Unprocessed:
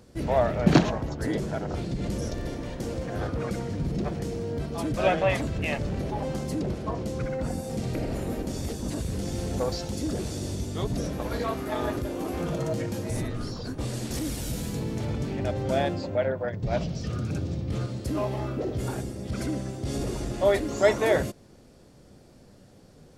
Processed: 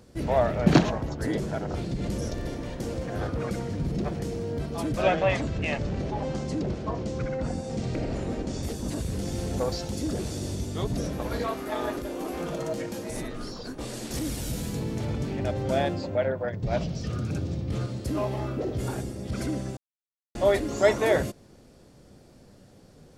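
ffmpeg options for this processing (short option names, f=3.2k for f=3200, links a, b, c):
-filter_complex "[0:a]asettb=1/sr,asplit=3[a][b][c];[a]atrim=end=5.024[d];[b]atrim=start=5.02:end=8.63,asetpts=PTS-STARTPTS,afade=t=in:d=0.004:c=qsin,afade=t=out:st=3.606:d=0.004:c=qsin,lowpass=f=7.6k:w=0.5412,lowpass=f=7.6k:w=1.3066[e];[c]atrim=start=8.626[f];[d][e]acrossfade=d=0.004:c1=hsin:c2=qsin[g];[g][f]acrossfade=d=0.004:c1=qsin:c2=hsin,asettb=1/sr,asplit=3[h][i][j];[h]atrim=end=11.464[k];[i]atrim=start=11.46:end=14.14,asetpts=PTS-STARTPTS,afade=t=in:d=0.004:c=qsin,afade=t=out:st=2.676:d=0.004:c=qsin,equalizer=f=98:w=1:g=-12.5[l];[j]atrim=start=14.136[m];[k][l]acrossfade=d=0.004:c1=hsin:c2=qsin[n];[n][m]acrossfade=d=0.004:c1=qsin:c2=hsin,asplit=3[o][p][q];[o]atrim=end=19.77,asetpts=PTS-STARTPTS,afade=t=out:st=19.766:d=0.004:c=hsin[r];[p]atrim=start=19.77:end=20.35,asetpts=PTS-STARTPTS,volume=0[s];[q]atrim=start=20.35,asetpts=PTS-STARTPTS,afade=t=in:d=0.004:c=hsin[t];[r][s][t]concat=n=3:v=0:a=1"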